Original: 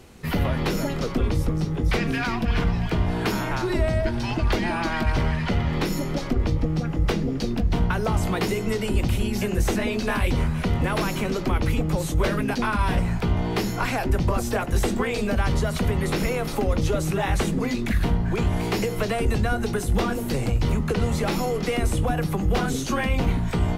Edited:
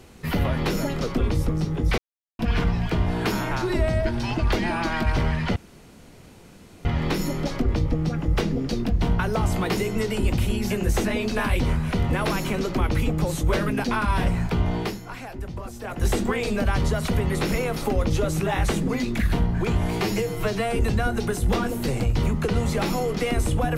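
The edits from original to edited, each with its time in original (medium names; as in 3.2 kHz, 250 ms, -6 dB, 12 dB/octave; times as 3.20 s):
1.98–2.39 s: mute
5.56 s: insert room tone 1.29 s
13.48–14.76 s: dip -11.5 dB, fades 0.22 s
18.72–19.22 s: stretch 1.5×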